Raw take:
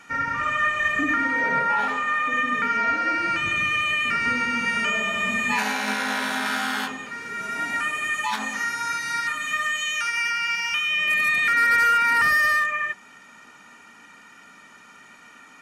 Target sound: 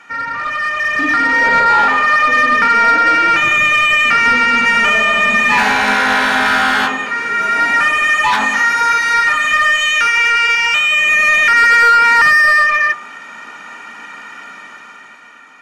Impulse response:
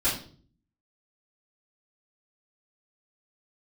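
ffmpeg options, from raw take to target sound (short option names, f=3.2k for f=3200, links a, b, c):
-filter_complex "[0:a]bandreject=f=48.11:t=h:w=4,bandreject=f=96.22:t=h:w=4,bandreject=f=144.33:t=h:w=4,bandreject=f=192.44:t=h:w=4,bandreject=f=240.55:t=h:w=4,bandreject=f=288.66:t=h:w=4,bandreject=f=336.77:t=h:w=4,bandreject=f=384.88:t=h:w=4,bandreject=f=432.99:t=h:w=4,bandreject=f=481.1:t=h:w=4,bandreject=f=529.21:t=h:w=4,bandreject=f=577.32:t=h:w=4,bandreject=f=625.43:t=h:w=4,bandreject=f=673.54:t=h:w=4,bandreject=f=721.65:t=h:w=4,bandreject=f=769.76:t=h:w=4,bandreject=f=817.87:t=h:w=4,bandreject=f=865.98:t=h:w=4,bandreject=f=914.09:t=h:w=4,bandreject=f=962.2:t=h:w=4,bandreject=f=1.01031k:t=h:w=4,bandreject=f=1.05842k:t=h:w=4,bandreject=f=1.10653k:t=h:w=4,bandreject=f=1.15464k:t=h:w=4,bandreject=f=1.20275k:t=h:w=4,bandreject=f=1.25086k:t=h:w=4,bandreject=f=1.29897k:t=h:w=4,bandreject=f=1.34708k:t=h:w=4,asplit=2[a][b];[b]highpass=f=720:p=1,volume=15dB,asoftclip=type=tanh:threshold=-11dB[c];[a][c]amix=inputs=2:normalize=0,lowpass=f=1.9k:p=1,volume=-6dB,dynaudnorm=f=230:g=9:m=10dB"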